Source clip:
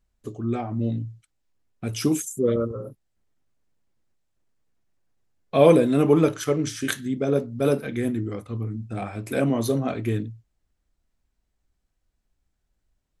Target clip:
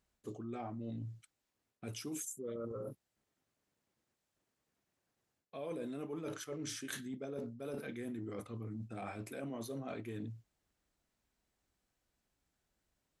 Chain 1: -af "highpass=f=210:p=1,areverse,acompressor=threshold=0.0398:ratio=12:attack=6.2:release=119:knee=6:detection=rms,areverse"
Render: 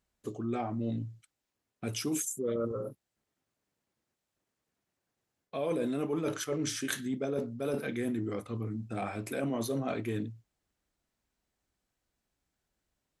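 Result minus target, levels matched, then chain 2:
compression: peak gain reduction -10 dB
-af "highpass=f=210:p=1,areverse,acompressor=threshold=0.0112:ratio=12:attack=6.2:release=119:knee=6:detection=rms,areverse"

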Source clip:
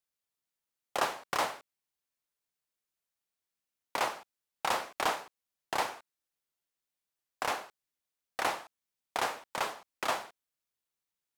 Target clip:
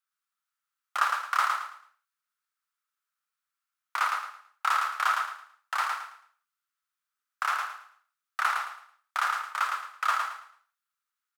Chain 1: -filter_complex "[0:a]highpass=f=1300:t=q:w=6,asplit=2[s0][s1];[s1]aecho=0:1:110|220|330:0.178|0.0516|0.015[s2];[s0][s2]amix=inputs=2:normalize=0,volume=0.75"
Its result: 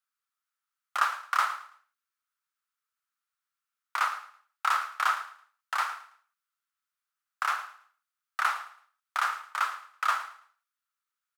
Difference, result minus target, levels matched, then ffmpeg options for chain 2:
echo-to-direct -10.5 dB
-filter_complex "[0:a]highpass=f=1300:t=q:w=6,asplit=2[s0][s1];[s1]aecho=0:1:110|220|330|440:0.596|0.173|0.0501|0.0145[s2];[s0][s2]amix=inputs=2:normalize=0,volume=0.75"

